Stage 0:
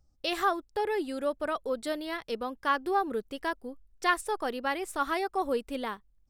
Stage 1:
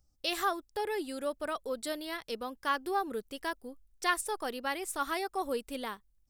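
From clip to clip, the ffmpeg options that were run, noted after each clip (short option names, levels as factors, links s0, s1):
-af "highshelf=f=4200:g=10.5,volume=0.596"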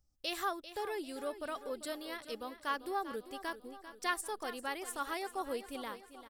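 -af "aecho=1:1:394|788|1182|1576|1970|2364:0.224|0.123|0.0677|0.0372|0.0205|0.0113,volume=0.562"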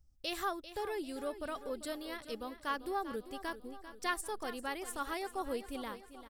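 -af "lowshelf=f=170:g=12,volume=0.891"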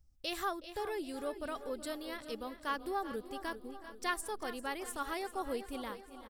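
-filter_complex "[0:a]asplit=2[s0][s1];[s1]adelay=371,lowpass=f=1700:p=1,volume=0.178,asplit=2[s2][s3];[s3]adelay=371,lowpass=f=1700:p=1,volume=0.47,asplit=2[s4][s5];[s5]adelay=371,lowpass=f=1700:p=1,volume=0.47,asplit=2[s6][s7];[s7]adelay=371,lowpass=f=1700:p=1,volume=0.47[s8];[s0][s2][s4][s6][s8]amix=inputs=5:normalize=0"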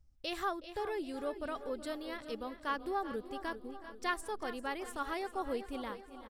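-af "lowpass=f=3900:p=1,volume=1.12"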